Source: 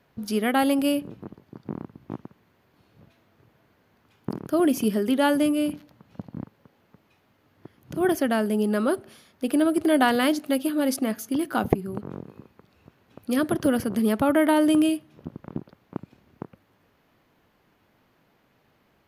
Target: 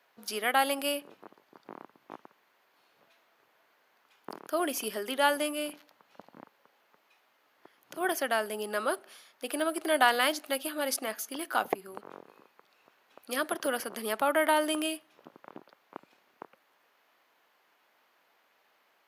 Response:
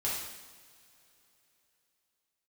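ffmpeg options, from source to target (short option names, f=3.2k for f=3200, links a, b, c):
-af "highpass=700"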